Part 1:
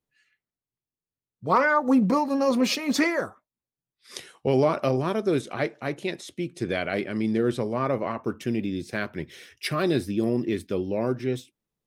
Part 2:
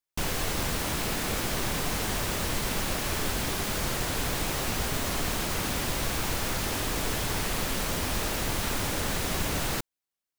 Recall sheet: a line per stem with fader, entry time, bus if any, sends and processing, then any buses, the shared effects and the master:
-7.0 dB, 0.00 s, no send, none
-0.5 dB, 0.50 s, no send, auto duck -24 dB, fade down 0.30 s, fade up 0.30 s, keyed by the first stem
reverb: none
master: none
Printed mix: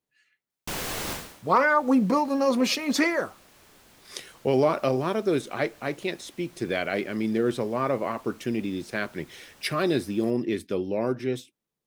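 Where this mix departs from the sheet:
stem 1 -7.0 dB -> +0.5 dB; master: extra bass shelf 100 Hz -11.5 dB

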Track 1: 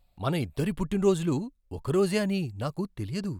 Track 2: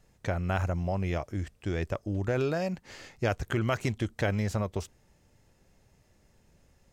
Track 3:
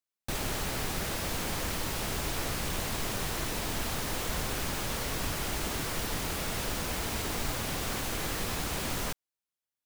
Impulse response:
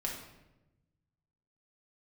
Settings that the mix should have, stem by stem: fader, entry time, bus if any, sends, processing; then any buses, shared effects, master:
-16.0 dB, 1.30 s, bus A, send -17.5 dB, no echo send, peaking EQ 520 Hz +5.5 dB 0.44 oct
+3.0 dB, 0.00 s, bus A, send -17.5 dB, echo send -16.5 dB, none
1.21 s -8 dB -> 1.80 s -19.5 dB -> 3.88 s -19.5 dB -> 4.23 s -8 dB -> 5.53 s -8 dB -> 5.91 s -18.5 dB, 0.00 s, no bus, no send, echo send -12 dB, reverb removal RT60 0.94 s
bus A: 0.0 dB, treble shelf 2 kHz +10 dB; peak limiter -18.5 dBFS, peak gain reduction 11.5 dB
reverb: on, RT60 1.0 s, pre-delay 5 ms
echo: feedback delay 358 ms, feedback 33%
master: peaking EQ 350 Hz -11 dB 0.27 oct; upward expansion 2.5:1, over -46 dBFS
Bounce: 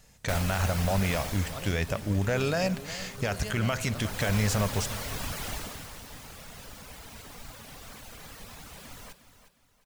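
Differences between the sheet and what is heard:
stem 3 -8.0 dB -> +0.5 dB; master: missing upward expansion 2.5:1, over -46 dBFS

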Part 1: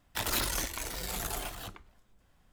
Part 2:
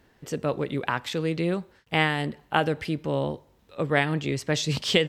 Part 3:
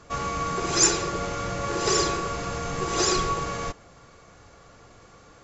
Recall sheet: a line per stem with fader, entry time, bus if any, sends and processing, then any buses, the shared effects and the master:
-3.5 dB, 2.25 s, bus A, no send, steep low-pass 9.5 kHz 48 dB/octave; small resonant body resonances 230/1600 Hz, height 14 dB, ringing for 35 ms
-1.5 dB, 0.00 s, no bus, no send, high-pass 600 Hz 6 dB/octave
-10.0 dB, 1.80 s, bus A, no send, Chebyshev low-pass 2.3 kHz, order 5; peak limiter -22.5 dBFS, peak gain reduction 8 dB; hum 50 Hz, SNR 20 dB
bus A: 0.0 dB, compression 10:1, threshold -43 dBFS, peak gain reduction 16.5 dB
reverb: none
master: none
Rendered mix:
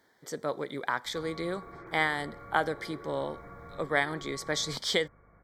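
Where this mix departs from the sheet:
stem 1: muted; stem 3: entry 1.80 s -> 1.05 s; master: extra Butterworth band-stop 2.7 kHz, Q 2.8

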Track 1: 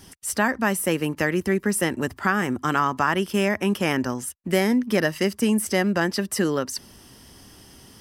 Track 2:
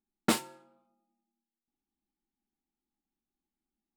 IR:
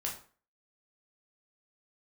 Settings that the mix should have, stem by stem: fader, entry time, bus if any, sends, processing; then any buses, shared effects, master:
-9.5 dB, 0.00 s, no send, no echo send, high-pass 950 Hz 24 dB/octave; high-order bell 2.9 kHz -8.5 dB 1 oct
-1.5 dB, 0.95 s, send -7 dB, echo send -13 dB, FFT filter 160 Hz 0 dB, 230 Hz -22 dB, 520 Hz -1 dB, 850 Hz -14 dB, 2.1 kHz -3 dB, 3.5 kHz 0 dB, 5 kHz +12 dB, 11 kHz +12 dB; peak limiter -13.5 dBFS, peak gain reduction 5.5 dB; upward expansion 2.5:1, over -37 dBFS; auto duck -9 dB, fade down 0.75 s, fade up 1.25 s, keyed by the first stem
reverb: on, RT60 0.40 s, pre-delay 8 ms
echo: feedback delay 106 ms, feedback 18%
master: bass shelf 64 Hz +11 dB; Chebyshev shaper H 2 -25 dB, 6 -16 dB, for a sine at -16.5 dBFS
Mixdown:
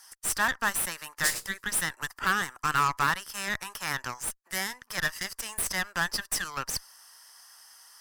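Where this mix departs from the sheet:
stem 1 -9.5 dB -> -1.0 dB; stem 2: missing peak limiter -13.5 dBFS, peak gain reduction 5.5 dB

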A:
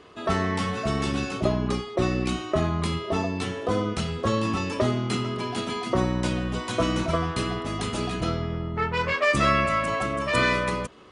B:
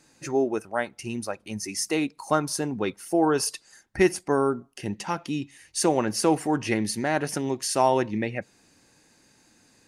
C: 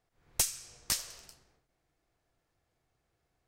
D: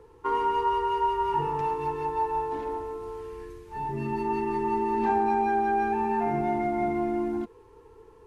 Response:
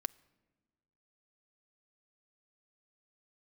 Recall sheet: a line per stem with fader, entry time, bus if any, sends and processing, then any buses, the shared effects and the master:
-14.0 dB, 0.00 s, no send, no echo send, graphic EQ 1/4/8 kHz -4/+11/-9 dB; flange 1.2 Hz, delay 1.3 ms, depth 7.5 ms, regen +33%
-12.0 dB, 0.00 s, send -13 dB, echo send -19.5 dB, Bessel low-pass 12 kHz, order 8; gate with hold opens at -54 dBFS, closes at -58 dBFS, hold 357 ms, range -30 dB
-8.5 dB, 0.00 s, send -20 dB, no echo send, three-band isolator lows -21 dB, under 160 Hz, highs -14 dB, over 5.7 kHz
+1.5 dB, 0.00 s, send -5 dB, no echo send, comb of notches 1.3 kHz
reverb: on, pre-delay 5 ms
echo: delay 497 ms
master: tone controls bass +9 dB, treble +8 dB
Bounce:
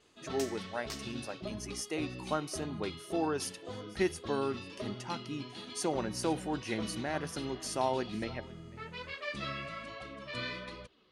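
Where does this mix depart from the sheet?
stem D: muted; master: missing tone controls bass +9 dB, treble +8 dB

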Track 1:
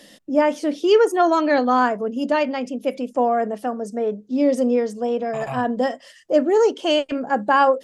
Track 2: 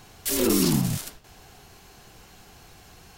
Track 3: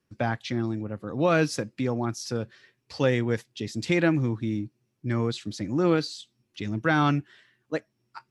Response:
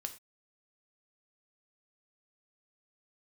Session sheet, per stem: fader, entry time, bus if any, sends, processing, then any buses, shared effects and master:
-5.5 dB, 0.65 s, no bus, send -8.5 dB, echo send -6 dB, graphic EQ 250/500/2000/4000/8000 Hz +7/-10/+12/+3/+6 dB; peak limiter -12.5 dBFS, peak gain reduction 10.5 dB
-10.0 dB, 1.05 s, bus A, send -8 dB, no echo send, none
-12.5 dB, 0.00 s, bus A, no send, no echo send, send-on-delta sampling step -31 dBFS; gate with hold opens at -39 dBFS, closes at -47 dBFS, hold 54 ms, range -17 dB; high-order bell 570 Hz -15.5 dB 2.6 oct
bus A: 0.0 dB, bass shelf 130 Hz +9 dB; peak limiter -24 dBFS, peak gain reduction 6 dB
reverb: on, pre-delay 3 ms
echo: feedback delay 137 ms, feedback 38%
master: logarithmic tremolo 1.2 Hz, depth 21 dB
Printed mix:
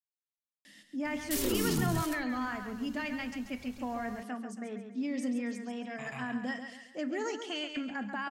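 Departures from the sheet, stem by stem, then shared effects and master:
stem 1 -5.5 dB -> -17.0 dB; stem 3: muted; master: missing logarithmic tremolo 1.2 Hz, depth 21 dB

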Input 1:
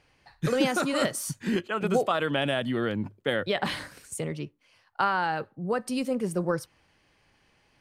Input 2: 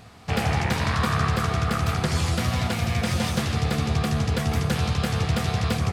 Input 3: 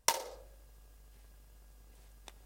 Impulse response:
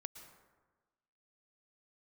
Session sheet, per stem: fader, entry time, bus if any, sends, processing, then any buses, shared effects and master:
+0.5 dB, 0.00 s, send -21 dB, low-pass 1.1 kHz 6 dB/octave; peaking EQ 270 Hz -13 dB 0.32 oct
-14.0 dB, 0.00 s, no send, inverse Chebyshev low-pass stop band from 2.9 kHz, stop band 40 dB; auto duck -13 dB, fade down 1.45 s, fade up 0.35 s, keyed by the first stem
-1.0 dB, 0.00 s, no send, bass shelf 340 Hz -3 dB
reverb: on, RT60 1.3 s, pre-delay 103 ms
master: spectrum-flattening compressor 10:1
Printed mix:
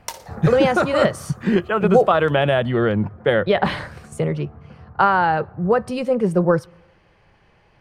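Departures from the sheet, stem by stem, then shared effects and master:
stem 1 +0.5 dB -> +12.0 dB; stem 2 -14.0 dB -> -5.5 dB; master: missing spectrum-flattening compressor 10:1

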